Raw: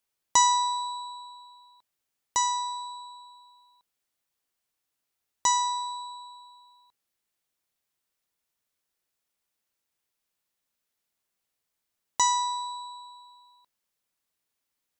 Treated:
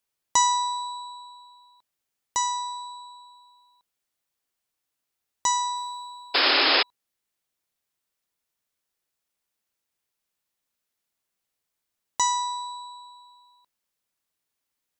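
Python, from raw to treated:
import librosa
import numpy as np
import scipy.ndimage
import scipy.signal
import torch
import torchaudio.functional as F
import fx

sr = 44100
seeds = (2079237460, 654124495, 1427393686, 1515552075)

y = fx.spec_paint(x, sr, seeds[0], shape='noise', start_s=6.34, length_s=0.49, low_hz=260.0, high_hz=5300.0, level_db=-20.0)
y = fx.quant_companded(y, sr, bits=8, at=(5.75, 6.39), fade=0.02)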